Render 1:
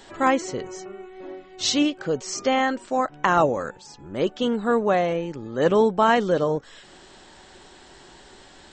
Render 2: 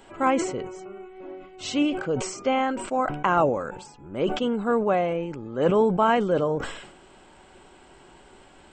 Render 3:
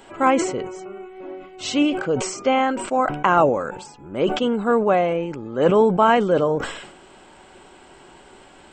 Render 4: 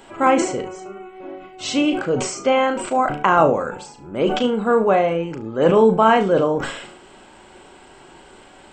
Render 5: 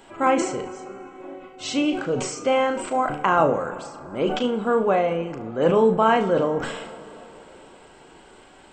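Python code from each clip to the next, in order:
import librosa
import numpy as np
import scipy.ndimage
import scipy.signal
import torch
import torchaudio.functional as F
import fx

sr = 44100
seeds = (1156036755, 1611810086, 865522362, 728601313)

y1 = fx.band_shelf(x, sr, hz=4900.0, db=-10.5, octaves=1.2)
y1 = fx.notch(y1, sr, hz=1800.0, q=5.9)
y1 = fx.sustainer(y1, sr, db_per_s=67.0)
y1 = y1 * 10.0 ** (-2.0 / 20.0)
y2 = fx.low_shelf(y1, sr, hz=120.0, db=-6.0)
y2 = y2 * 10.0 ** (5.0 / 20.0)
y3 = fx.room_flutter(y2, sr, wall_m=6.2, rt60_s=0.27)
y3 = y3 * 10.0 ** (1.0 / 20.0)
y4 = fx.rev_plate(y3, sr, seeds[0], rt60_s=3.9, hf_ratio=0.5, predelay_ms=0, drr_db=14.5)
y4 = y4 * 10.0 ** (-4.0 / 20.0)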